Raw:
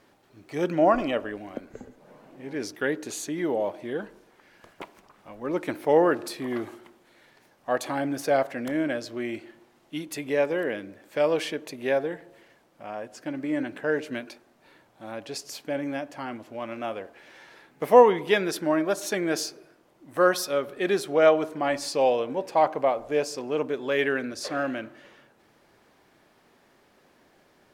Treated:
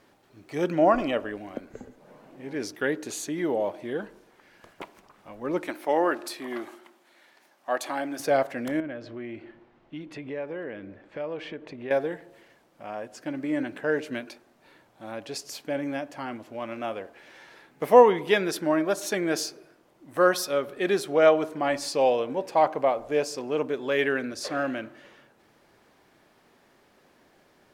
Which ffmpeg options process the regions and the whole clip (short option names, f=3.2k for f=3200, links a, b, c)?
-filter_complex "[0:a]asettb=1/sr,asplit=3[a][b][c];[a]atrim=end=5.674[d];[b]atrim=start=5.67:end=8.2,asetpts=PTS-STARTPTS,afade=t=in:d=0.004:c=qsin,afade=t=out:st=2.526:d=0.004:c=qsin,highpass=330,equalizer=f=460:t=o:w=0.2:g=-11.5[e];[c]atrim=start=8.196[f];[d][e]acrossfade=d=0.004:c1=hsin:c2=qsin[g];[g][f]acrossfade=d=0.004:c1=qsin:c2=hsin,asettb=1/sr,asplit=3[h][i][j];[h]atrim=end=8.804[k];[i]atrim=start=8.8:end=11.91,asetpts=PTS-STARTPTS,afade=t=in:d=0.004:c=qsin,afade=t=out:st=3.106:d=0.004:c=qsin,lowpass=2.7k,lowshelf=f=93:g=11,acompressor=threshold=-38dB:ratio=2:attack=3.2:release=140:knee=1:detection=peak[l];[j]atrim=start=11.906[m];[k][l]acrossfade=d=0.004:c1=hsin:c2=qsin[n];[n][m]acrossfade=d=0.004:c1=qsin:c2=hsin"